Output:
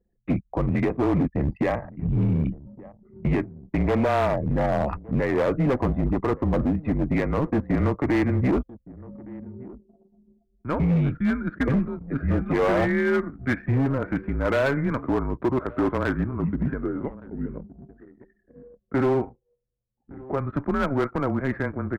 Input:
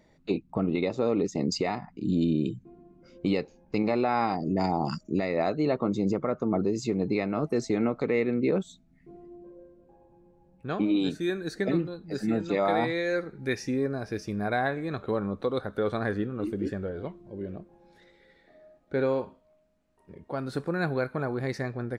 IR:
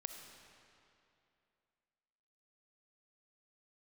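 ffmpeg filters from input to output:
-filter_complex "[0:a]asettb=1/sr,asplit=3[s0][s1][s2];[s0]atrim=end=13.684[s3];[s1]atrim=start=13.68:end=15,asetpts=PTS-STARTPTS,afade=t=in:d=0.004:c=qsin,afade=t=out:st=1.316:d=0.004:c=qsin,aeval=exprs='0.168*(cos(1*acos(clip(val(0)/0.168,-1,1)))-cos(1*PI/2))+0.0133*(cos(5*acos(clip(val(0)/0.168,-1,1)))-cos(5*PI/2))':c=same[s4];[s2]atrim=start=14.996[s5];[s3][s4]acrossfade=d=0.004:c1=hsin:c2=qsin[s6];[s6][s5]acrossfade=d=0.004:c1=qsin:c2=hsin,highpass=f=220:t=q:w=0.5412,highpass=f=220:t=q:w=1.307,lowpass=f=2300:t=q:w=0.5176,lowpass=f=2300:t=q:w=0.7071,lowpass=f=2300:t=q:w=1.932,afreqshift=-140,asoftclip=type=hard:threshold=0.0596,asplit=2[s7][s8];[s8]adelay=1166,volume=0.1,highshelf=f=4000:g=-26.2[s9];[s7][s9]amix=inputs=2:normalize=0,anlmdn=0.00251,volume=2.24"

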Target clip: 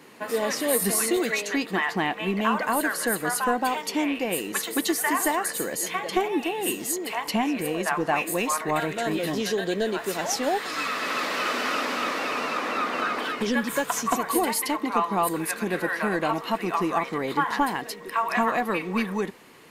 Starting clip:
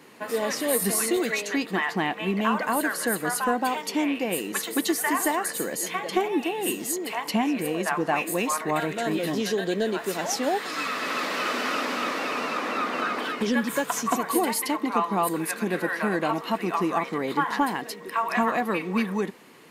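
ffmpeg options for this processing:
-af "asubboost=boost=3.5:cutoff=90,volume=1.12"

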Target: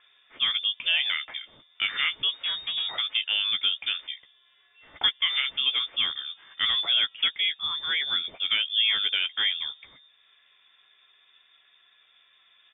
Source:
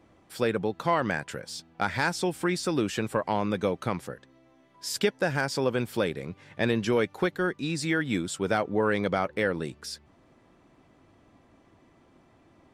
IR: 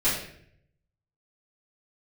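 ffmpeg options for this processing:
-filter_complex "[0:a]asettb=1/sr,asplit=3[s0][s1][s2];[s0]atrim=end=2.294[s3];[s1]atrim=start=2.29:end=2.92,asetpts=PTS-STARTPTS,afade=t=in:d=0.004:c=qsin,afade=t=out:st=0.626:d=0.004:c=qsin,aeval=exprs='(tanh(17.8*val(0)+0.45)-tanh(0.45))/17.8':c=same[s4];[s2]atrim=start=2.916[s5];[s3][s4]acrossfade=d=0.004:c1=hsin:c2=qsin[s6];[s6][s5]acrossfade=d=0.004:c1=qsin:c2=hsin,acrossover=split=310|1500|2100[s7][s8][s9][s10];[s8]agate=range=0.0224:threshold=0.00178:ratio=3:detection=peak[s11];[s9]acompressor=mode=upward:threshold=0.00126:ratio=2.5[s12];[s7][s11][s12][s10]amix=inputs=4:normalize=0,asplit=2[s13][s14];[s14]adelay=14,volume=0.376[s15];[s13][s15]amix=inputs=2:normalize=0,lowpass=f=3100:t=q:w=0.5098,lowpass=f=3100:t=q:w=0.6013,lowpass=f=3100:t=q:w=0.9,lowpass=f=3100:t=q:w=2.563,afreqshift=-3700"

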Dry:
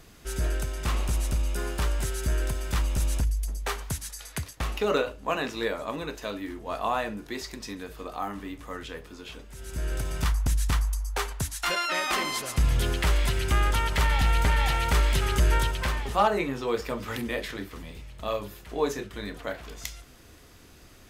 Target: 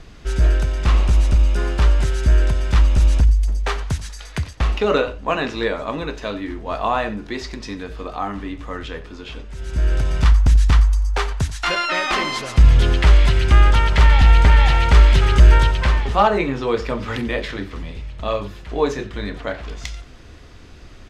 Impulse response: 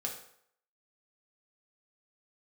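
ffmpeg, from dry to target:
-af "lowpass=5000,lowshelf=f=83:g=8.5,aecho=1:1:89:0.126,volume=2.24"

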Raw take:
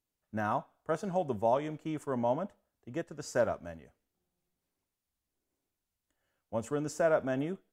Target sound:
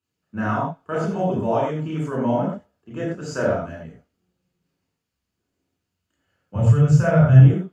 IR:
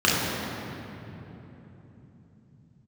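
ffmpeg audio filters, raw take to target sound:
-filter_complex "[0:a]asettb=1/sr,asplit=3[s0][s1][s2];[s0]atrim=end=6.554[s3];[s1]atrim=start=6.55:end=7.4,asetpts=PTS-STARTPTS,afade=t=in:d=0.004:c=qsin,afade=t=out:st=0.846:d=0.004:c=qsin,lowshelf=f=190:t=q:w=3:g=12.5[s4];[s2]atrim=start=7.396[s5];[s3][s4]acrossfade=d=0.004:c1=hsin:c2=qsin[s6];[s6][s5]acrossfade=d=0.004:c1=qsin:c2=hsin[s7];[1:a]atrim=start_sample=2205,atrim=end_sample=6174[s8];[s7][s8]afir=irnorm=-1:irlink=0,volume=0.376"

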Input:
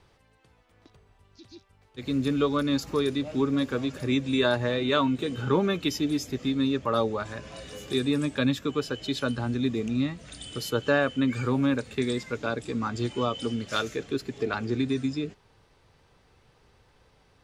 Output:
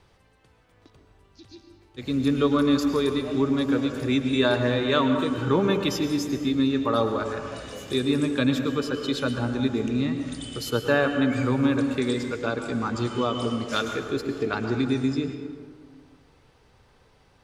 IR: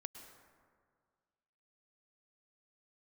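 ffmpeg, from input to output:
-filter_complex "[1:a]atrim=start_sample=2205[s0];[0:a][s0]afir=irnorm=-1:irlink=0,volume=2.11"

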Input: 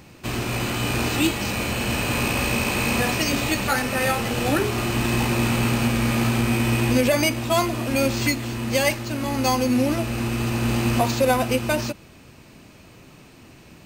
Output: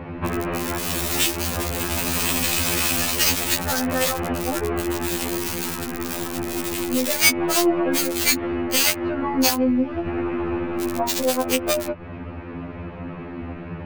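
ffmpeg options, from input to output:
-filter_complex "[0:a]asettb=1/sr,asplit=3[s0][s1][s2];[s0]atrim=end=9.484[s3];[s1]atrim=start=9.48:end=10.07,asetpts=PTS-STARTPTS,afade=t=in:d=0.004:c=qsin,afade=t=out:st=0.586:d=0.004:c=qsin,acrossover=split=190|3000[s4][s5][s6];[s5]acompressor=threshold=0.0316:ratio=6[s7];[s4][s7][s6]amix=inputs=3:normalize=0[s8];[s2]atrim=start=10.066[s9];[s3][s8]acrossfade=d=0.004:c1=hsin:c2=qsin[s10];[s10][s9]acrossfade=d=0.004:c1=qsin:c2=hsin,aeval=exprs='(tanh(3.98*val(0)+0.25)-tanh(0.25))/3.98':c=same,asettb=1/sr,asplit=3[s11][s12][s13];[s11]atrim=end=5.374[s14];[s12]atrim=start=5.37:end=6.06,asetpts=PTS-STARTPTS,afade=t=in:d=0.004:c=qsin,afade=t=out:st=0.686:d=0.004:c=qsin,equalizer=f=610:t=o:w=0.44:g=-11[s15];[s13]atrim=start=6.056[s16];[s14][s15]acrossfade=d=0.004:c1=hsin:c2=qsin[s17];[s17][s16]acrossfade=d=0.004:c1=qsin:c2=hsin,acrossover=split=2100[s18][s19];[s18]acompressor=threshold=0.02:ratio=16[s20];[s19]acrusher=bits=3:mix=0:aa=0.000001[s21];[s20][s21]amix=inputs=2:normalize=0,asettb=1/sr,asplit=3[s22][s23][s24];[s22]atrim=end=7.394[s25];[s23]atrim=start=7.39:end=8.13,asetpts=PTS-STARTPTS,afade=t=in:d=0.004:c=qsin,afade=t=out:st=0.736:d=0.004:c=qsin,aecho=1:1:6.1:0.8,atrim=end_sample=32634[s26];[s24]atrim=start=8.126[s27];[s25][s26]acrossfade=d=0.004:c1=hsin:c2=qsin[s28];[s28][s27]acrossfade=d=0.004:c1=qsin:c2=hsin,alimiter=level_in=9.44:limit=0.891:release=50:level=0:latency=1,afftfilt=real='re*2*eq(mod(b,4),0)':imag='im*2*eq(mod(b,4),0)':win_size=2048:overlap=0.75,volume=0.794"

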